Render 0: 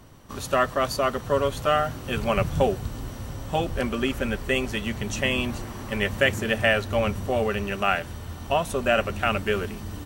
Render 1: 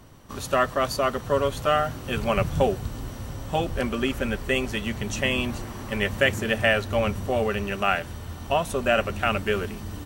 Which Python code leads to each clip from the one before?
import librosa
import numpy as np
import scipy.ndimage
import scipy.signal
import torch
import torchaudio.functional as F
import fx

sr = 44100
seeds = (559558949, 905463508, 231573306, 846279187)

y = x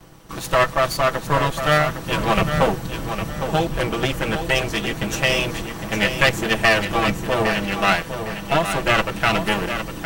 y = fx.lower_of_two(x, sr, delay_ms=6.1)
y = fx.echo_feedback(y, sr, ms=808, feedback_pct=27, wet_db=-8.5)
y = y * 10.0 ** (5.5 / 20.0)